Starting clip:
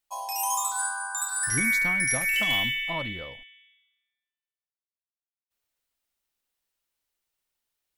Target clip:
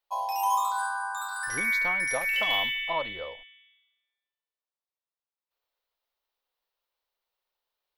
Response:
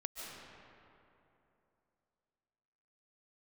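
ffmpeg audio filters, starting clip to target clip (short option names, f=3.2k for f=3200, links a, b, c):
-af "equalizer=f=125:t=o:w=1:g=-10,equalizer=f=250:t=o:w=1:g=-6,equalizer=f=500:t=o:w=1:g=9,equalizer=f=1k:t=o:w=1:g=8,equalizer=f=4k:t=o:w=1:g=7,equalizer=f=8k:t=o:w=1:g=-12,volume=-4.5dB"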